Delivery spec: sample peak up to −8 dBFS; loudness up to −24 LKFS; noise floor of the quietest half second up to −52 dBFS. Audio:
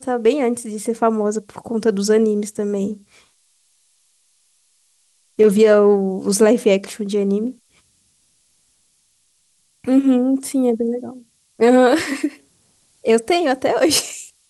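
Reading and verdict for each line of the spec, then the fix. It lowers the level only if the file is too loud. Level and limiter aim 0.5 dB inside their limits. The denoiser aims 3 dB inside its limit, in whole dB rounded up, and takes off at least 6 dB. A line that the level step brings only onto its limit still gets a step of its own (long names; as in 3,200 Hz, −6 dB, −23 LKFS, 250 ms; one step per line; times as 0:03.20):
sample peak −4.0 dBFS: out of spec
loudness −17.5 LKFS: out of spec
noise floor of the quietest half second −62 dBFS: in spec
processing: level −7 dB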